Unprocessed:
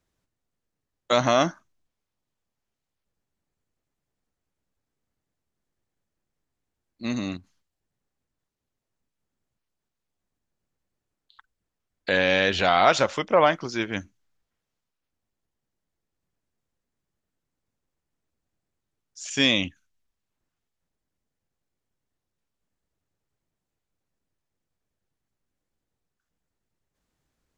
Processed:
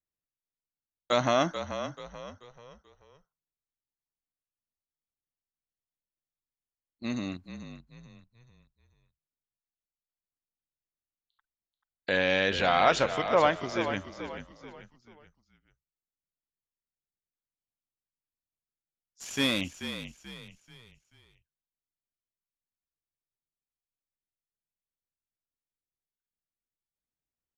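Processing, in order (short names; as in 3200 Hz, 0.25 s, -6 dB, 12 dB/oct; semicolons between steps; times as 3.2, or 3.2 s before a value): 19.2–19.61 CVSD 64 kbps; bell 5700 Hz -2 dB 0.77 oct; gate -44 dBFS, range -17 dB; frequency-shifting echo 0.435 s, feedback 38%, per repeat -39 Hz, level -10 dB; gain -4.5 dB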